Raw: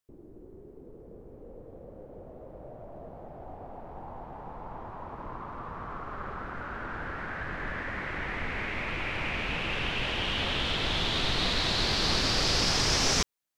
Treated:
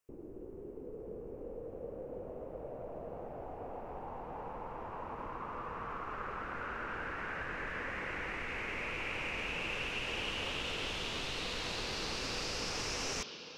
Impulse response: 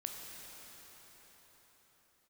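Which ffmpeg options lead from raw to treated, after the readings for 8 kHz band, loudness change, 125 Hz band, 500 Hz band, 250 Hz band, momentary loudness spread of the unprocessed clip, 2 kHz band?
−10.0 dB, −10.0 dB, −11.5 dB, −4.0 dB, −8.5 dB, 22 LU, −6.0 dB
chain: -filter_complex "[0:a]acrossover=split=1700|4800[link_01][link_02][link_03];[link_01]acompressor=threshold=-44dB:ratio=4[link_04];[link_02]acompressor=threshold=-46dB:ratio=4[link_05];[link_03]acompressor=threshold=-45dB:ratio=4[link_06];[link_04][link_05][link_06]amix=inputs=3:normalize=0,asplit=2[link_07][link_08];[link_08]highpass=210,equalizer=frequency=480:width_type=q:width=4:gain=9,equalizer=frequency=700:width_type=q:width=4:gain=-7,equalizer=frequency=1900:width_type=q:width=4:gain=-7,equalizer=frequency=2800:width_type=q:width=4:gain=9,lowpass=frequency=6100:width=0.5412,lowpass=frequency=6100:width=1.3066[link_09];[1:a]atrim=start_sample=2205,lowpass=5000[link_10];[link_09][link_10]afir=irnorm=-1:irlink=0,volume=-2.5dB[link_11];[link_07][link_11]amix=inputs=2:normalize=0"

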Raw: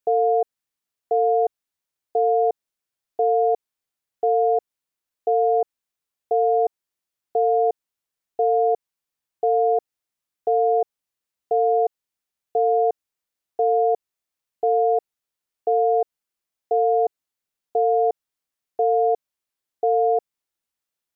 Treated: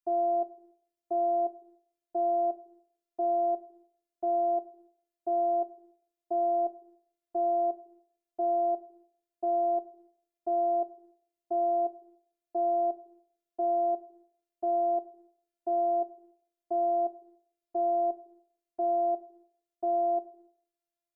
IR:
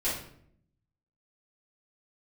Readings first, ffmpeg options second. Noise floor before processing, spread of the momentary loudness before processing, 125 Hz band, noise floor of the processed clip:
below −85 dBFS, 9 LU, can't be measured, below −85 dBFS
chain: -filter_complex "[0:a]asplit=2[link_01][link_02];[link_02]adynamicequalizer=threshold=0.02:dfrequency=350:dqfactor=2.2:tfrequency=350:tqfactor=2.2:attack=5:release=100:ratio=0.375:range=2:mode=boostabove:tftype=bell[link_03];[1:a]atrim=start_sample=2205,lowshelf=frequency=300:gain=7.5[link_04];[link_03][link_04]afir=irnorm=-1:irlink=0,volume=-21.5dB[link_05];[link_01][link_05]amix=inputs=2:normalize=0,afftfilt=real='hypot(re,im)*cos(PI*b)':imag='0':win_size=512:overlap=0.75,volume=-7.5dB"

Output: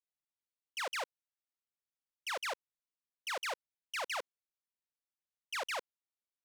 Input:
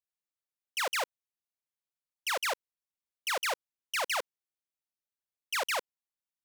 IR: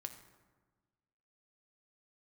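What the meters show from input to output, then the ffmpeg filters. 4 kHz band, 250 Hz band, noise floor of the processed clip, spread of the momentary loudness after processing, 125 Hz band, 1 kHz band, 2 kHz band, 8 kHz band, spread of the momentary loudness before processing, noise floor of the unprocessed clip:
−7.0 dB, −6.0 dB, below −85 dBFS, 8 LU, can't be measured, −6.0 dB, −6.5 dB, −9.0 dB, 8 LU, below −85 dBFS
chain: -af "highshelf=frequency=11000:gain=-11.5,volume=-6dB"

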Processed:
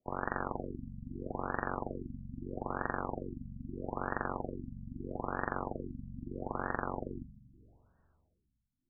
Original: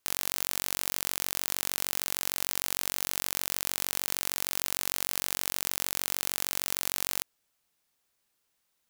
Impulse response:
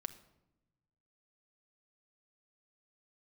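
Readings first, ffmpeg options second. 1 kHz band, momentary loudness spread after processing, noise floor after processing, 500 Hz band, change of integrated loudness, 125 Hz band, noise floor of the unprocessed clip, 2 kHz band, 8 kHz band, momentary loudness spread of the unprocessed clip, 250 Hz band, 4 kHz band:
+3.5 dB, 9 LU, −80 dBFS, +5.5 dB, −10.0 dB, +8.0 dB, −77 dBFS, −4.5 dB, below −40 dB, 0 LU, +8.0 dB, below −40 dB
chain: -filter_complex "[0:a]aeval=exprs='val(0)*sin(2*PI*220*n/s)':channel_layout=same[link_01];[1:a]atrim=start_sample=2205,asetrate=28224,aresample=44100[link_02];[link_01][link_02]afir=irnorm=-1:irlink=0,afftfilt=real='re*lt(b*sr/1024,240*pow(1900/240,0.5+0.5*sin(2*PI*0.78*pts/sr)))':imag='im*lt(b*sr/1024,240*pow(1900/240,0.5+0.5*sin(2*PI*0.78*pts/sr)))':win_size=1024:overlap=0.75,volume=10.5dB"

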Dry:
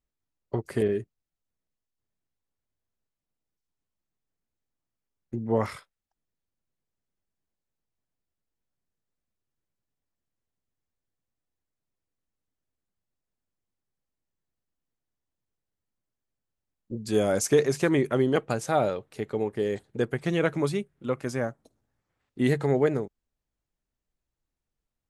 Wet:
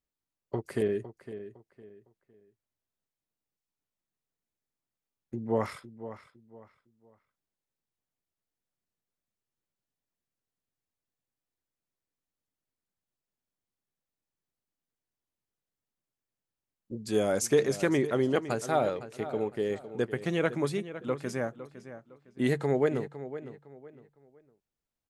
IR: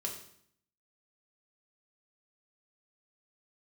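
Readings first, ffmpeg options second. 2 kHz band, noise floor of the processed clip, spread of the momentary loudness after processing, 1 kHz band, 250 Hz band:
−2.5 dB, below −85 dBFS, 17 LU, −2.5 dB, −3.0 dB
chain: -filter_complex "[0:a]lowshelf=frequency=90:gain=-8.5,asplit=2[link_01][link_02];[link_02]adelay=508,lowpass=frequency=3800:poles=1,volume=-13dB,asplit=2[link_03][link_04];[link_04]adelay=508,lowpass=frequency=3800:poles=1,volume=0.3,asplit=2[link_05][link_06];[link_06]adelay=508,lowpass=frequency=3800:poles=1,volume=0.3[link_07];[link_03][link_05][link_07]amix=inputs=3:normalize=0[link_08];[link_01][link_08]amix=inputs=2:normalize=0,volume=-2.5dB"

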